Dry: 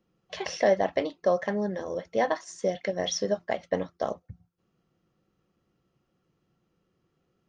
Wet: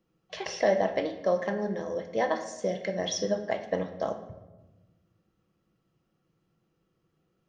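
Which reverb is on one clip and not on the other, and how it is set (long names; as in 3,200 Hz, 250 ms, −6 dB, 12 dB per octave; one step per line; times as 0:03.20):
rectangular room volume 530 cubic metres, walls mixed, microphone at 0.64 metres
level −2 dB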